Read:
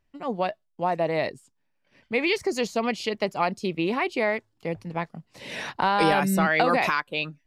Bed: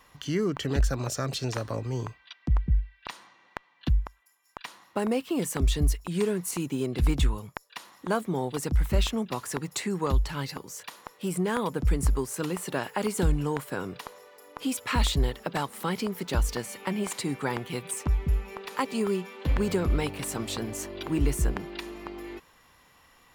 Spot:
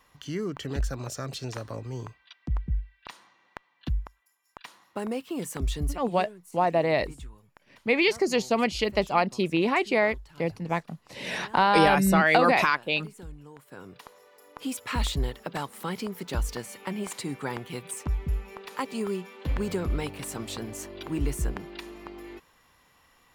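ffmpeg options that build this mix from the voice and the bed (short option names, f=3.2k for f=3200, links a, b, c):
-filter_complex "[0:a]adelay=5750,volume=1.5dB[a];[1:a]volume=11.5dB,afade=t=out:st=5.8:d=0.49:silence=0.188365,afade=t=in:st=13.56:d=0.88:silence=0.158489[b];[a][b]amix=inputs=2:normalize=0"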